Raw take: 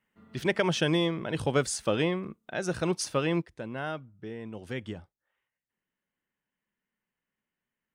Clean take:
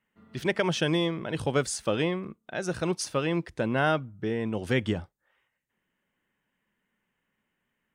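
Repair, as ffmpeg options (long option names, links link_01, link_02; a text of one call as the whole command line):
ffmpeg -i in.wav -af "asetnsamples=nb_out_samples=441:pad=0,asendcmd='3.42 volume volume 10dB',volume=0dB" out.wav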